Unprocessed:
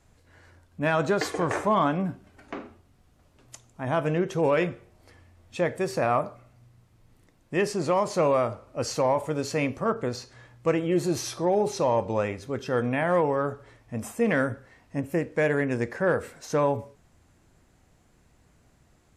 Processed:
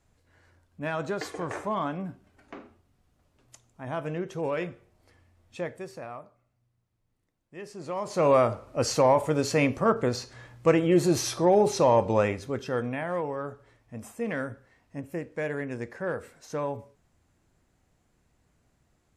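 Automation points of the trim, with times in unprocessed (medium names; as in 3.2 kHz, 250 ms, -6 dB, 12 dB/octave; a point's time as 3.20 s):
5.60 s -7 dB
6.19 s -18 dB
7.55 s -18 dB
8.02 s -7.5 dB
8.33 s +3 dB
12.28 s +3 dB
13.09 s -7.5 dB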